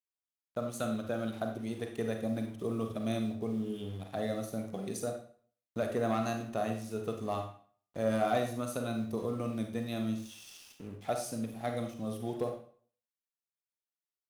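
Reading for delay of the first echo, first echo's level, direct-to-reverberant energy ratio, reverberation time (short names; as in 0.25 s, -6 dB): none, none, 4.0 dB, 0.50 s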